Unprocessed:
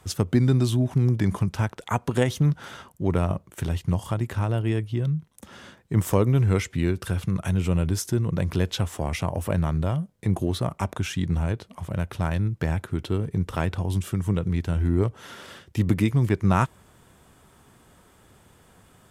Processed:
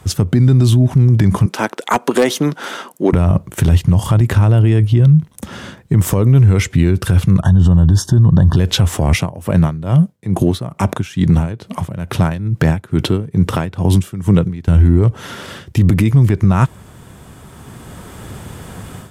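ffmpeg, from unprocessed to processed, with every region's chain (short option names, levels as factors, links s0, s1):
-filter_complex "[0:a]asettb=1/sr,asplit=3[s0][s1][s2];[s0]atrim=end=1.464[s3];[s1]atrim=start=1.46:end=3.13,asetpts=PTS-STARTPTS,afade=t=in:d=0.004:c=qsin,afade=t=out:st=1.666:d=0.004:c=qsin,highpass=f=270:w=0.5412,highpass=f=270:w=1.3066,asoftclip=type=hard:threshold=0.126[s4];[s2]atrim=start=3.126[s5];[s3][s4]acrossfade=d=0.004:c1=hsin:c2=qsin[s6];[s6][s5]acrossfade=d=0.004:c1=qsin:c2=hsin,asettb=1/sr,asplit=3[s7][s8][s9];[s7]atrim=end=7.414[s10];[s8]atrim=start=7.41:end=8.57,asetpts=PTS-STARTPTS,afade=t=in:d=0.004:c=qsin,afade=t=out:st=1.156:d=0.004:c=qsin,asuperstop=centerf=2300:order=12:qfactor=2,aemphasis=mode=reproduction:type=50fm,aecho=1:1:1.1:0.47,atrim=end_sample=51156[s11];[s9]atrim=start=8.566[s12];[s10][s11]acrossfade=d=0.004:c1=hsin:c2=qsin[s13];[s13][s12]acrossfade=d=0.004:c1=qsin:c2=hsin,asettb=1/sr,asplit=3[s14][s15][s16];[s14]atrim=end=9.144[s17];[s15]atrim=start=9.14:end=14.68,asetpts=PTS-STARTPTS,afade=t=in:d=0.004:c=qsin,afade=t=out:st=5.536:d=0.004:c=qsin,highpass=120,aeval=exprs='val(0)*pow(10,-19*(0.5-0.5*cos(2*PI*2.3*n/s))/20)':c=same[s18];[s16]atrim=start=14.676[s19];[s17][s18]acrossfade=d=0.004:c1=hsin:c2=qsin[s20];[s20][s19]acrossfade=d=0.004:c1=qsin:c2=hsin,equalizer=f=120:w=0.55:g=6.5,dynaudnorm=f=730:g=3:m=3.76,alimiter=level_in=3.76:limit=0.891:release=50:level=0:latency=1,volume=0.75"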